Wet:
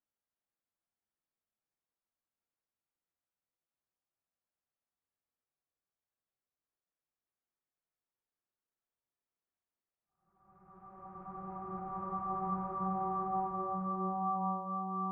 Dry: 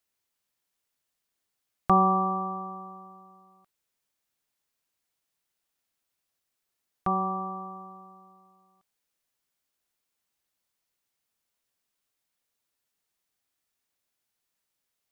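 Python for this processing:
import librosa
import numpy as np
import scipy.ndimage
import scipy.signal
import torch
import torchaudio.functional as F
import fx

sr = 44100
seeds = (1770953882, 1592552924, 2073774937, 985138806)

y = fx.env_lowpass(x, sr, base_hz=1400.0, full_db=-25.5)
y = fx.paulstretch(y, sr, seeds[0], factor=10.0, window_s=0.5, from_s=5.81)
y = F.gain(torch.from_numpy(y), -8.0).numpy()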